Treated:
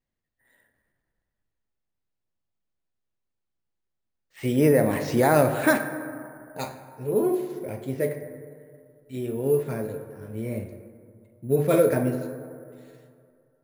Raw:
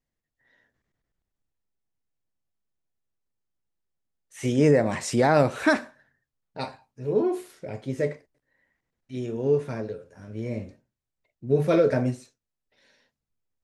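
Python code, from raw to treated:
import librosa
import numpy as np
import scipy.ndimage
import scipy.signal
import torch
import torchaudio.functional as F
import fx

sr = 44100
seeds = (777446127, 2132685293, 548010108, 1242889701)

y = fx.rev_plate(x, sr, seeds[0], rt60_s=2.4, hf_ratio=0.35, predelay_ms=0, drr_db=8.0)
y = np.repeat(scipy.signal.resample_poly(y, 1, 4), 4)[:len(y)]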